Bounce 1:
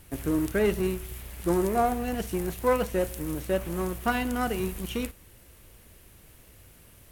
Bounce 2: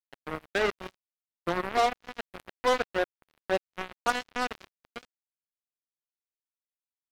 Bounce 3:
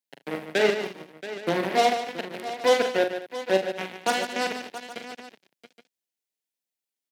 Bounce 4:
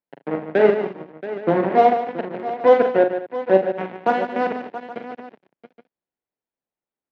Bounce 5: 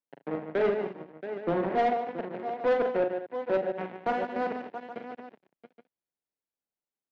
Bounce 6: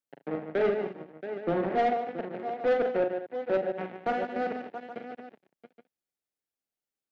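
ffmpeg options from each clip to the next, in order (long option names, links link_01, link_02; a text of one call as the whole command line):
ffmpeg -i in.wav -filter_complex "[0:a]acrossover=split=410 2600:gain=0.158 1 0.0794[link_01][link_02][link_03];[link_01][link_02][link_03]amix=inputs=3:normalize=0,asplit=2[link_04][link_05];[link_05]acompressor=threshold=-37dB:ratio=16,volume=-2dB[link_06];[link_04][link_06]amix=inputs=2:normalize=0,acrusher=bits=3:mix=0:aa=0.5" out.wav
ffmpeg -i in.wav -filter_complex "[0:a]highpass=frequency=150:width=0.5412,highpass=frequency=150:width=1.3066,equalizer=frequency=1200:width=2.4:gain=-12,asplit=2[link_01][link_02];[link_02]aecho=0:1:42|75|147|224|677|822:0.447|0.119|0.355|0.133|0.224|0.133[link_03];[link_01][link_03]amix=inputs=2:normalize=0,volume=5.5dB" out.wav
ffmpeg -i in.wav -af "lowpass=1200,volume=7.5dB" out.wav
ffmpeg -i in.wav -af "asoftclip=type=tanh:threshold=-12.5dB,volume=-7dB" out.wav
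ffmpeg -i in.wav -af "bandreject=frequency=1000:width=6.7" out.wav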